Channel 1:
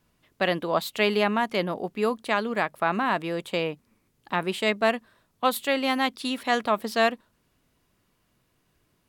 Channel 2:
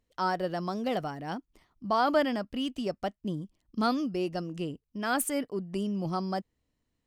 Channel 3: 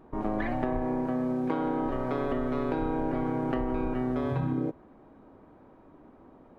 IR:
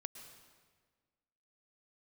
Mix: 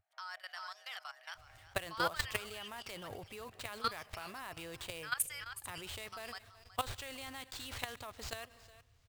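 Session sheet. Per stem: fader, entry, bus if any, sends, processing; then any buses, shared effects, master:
-4.0 dB, 1.35 s, send -9.5 dB, echo send -22 dB, treble shelf 2.3 kHz +12 dB; compression 16:1, threshold -27 dBFS, peak gain reduction 15 dB; sample-rate reducer 12 kHz, jitter 20%
+1.0 dB, 0.00 s, no send, echo send -11.5 dB, high-pass 1.3 kHz 24 dB/octave
-6.0 dB, 0.00 s, no send, no echo send, Chebyshev high-pass 650 Hz, order 6; compression, threshold -42 dBFS, peak gain reduction 9.5 dB; static phaser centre 2.4 kHz, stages 4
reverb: on, RT60 1.6 s, pre-delay 102 ms
echo: feedback delay 371 ms, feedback 15%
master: level held to a coarse grid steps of 15 dB; vibrato 2.5 Hz 29 cents; resonant low shelf 140 Hz +12.5 dB, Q 3

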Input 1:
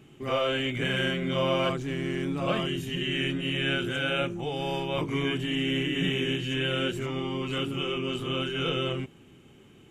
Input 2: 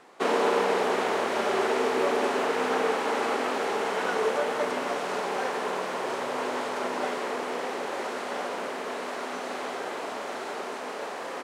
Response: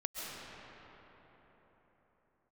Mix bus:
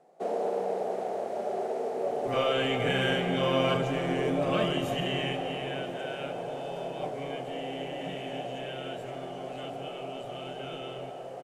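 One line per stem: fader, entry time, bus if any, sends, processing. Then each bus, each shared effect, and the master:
5.00 s -3.5 dB -> 5.77 s -15.5 dB, 2.05 s, send -7 dB, none
-12.0 dB, 0.00 s, no send, FFT filter 110 Hz 0 dB, 160 Hz +12 dB, 260 Hz -1 dB, 710 Hz +12 dB, 1 kHz -8 dB, 3.3 kHz -9 dB, 8.9 kHz -2 dB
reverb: on, pre-delay 95 ms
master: none

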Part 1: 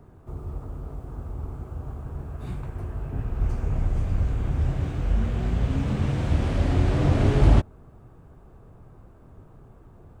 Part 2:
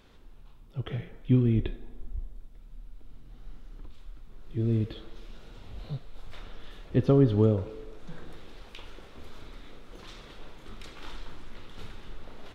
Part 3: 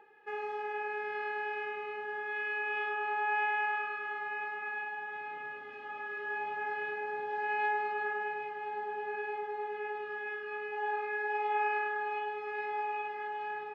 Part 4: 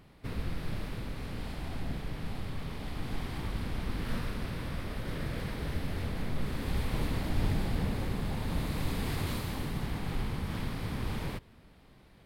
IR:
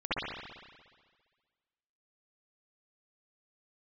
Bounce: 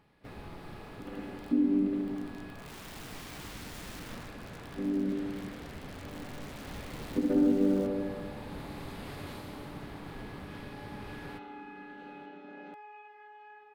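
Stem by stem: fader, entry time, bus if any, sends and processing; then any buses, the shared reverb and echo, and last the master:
2.51 s -12 dB -> 2.95 s -2.5 dB -> 3.91 s -2.5 dB -> 4.34 s -11.5 dB, 0.25 s, bus A, no send, high-pass 420 Hz 12 dB/octave; level flattener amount 70%
-4.0 dB, 0.20 s, no bus, send -3.5 dB, vocoder on a held chord major triad, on G3; treble shelf 4 kHz -8.5 dB
-13.5 dB, 0.00 s, bus A, no send, bass shelf 160 Hz -9.5 dB
-7.0 dB, 0.00 s, no bus, no send, treble shelf 6 kHz -5 dB
bus A: 0.0 dB, integer overflow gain 34.5 dB; peak limiter -43 dBFS, peak gain reduction 8.5 dB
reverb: on, RT60 1.6 s, pre-delay 57 ms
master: bass shelf 100 Hz -9.5 dB; compression 1.5:1, threshold -31 dBFS, peak gain reduction 6 dB

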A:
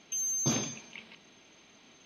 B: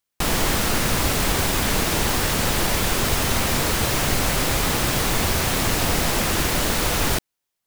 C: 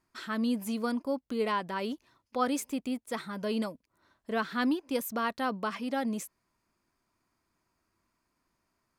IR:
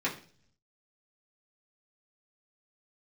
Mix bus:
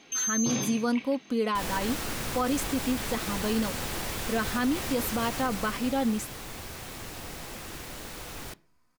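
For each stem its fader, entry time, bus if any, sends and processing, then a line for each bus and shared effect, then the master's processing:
+1.0 dB, 0.00 s, send -9 dB, none
5.29 s -12.5 dB -> 6.08 s -19.5 dB, 1.35 s, send -20.5 dB, none
+2.5 dB, 0.00 s, no send, comb 4 ms, depth 49%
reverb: on, RT60 0.45 s, pre-delay 3 ms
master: peak limiter -18.5 dBFS, peak gain reduction 8.5 dB

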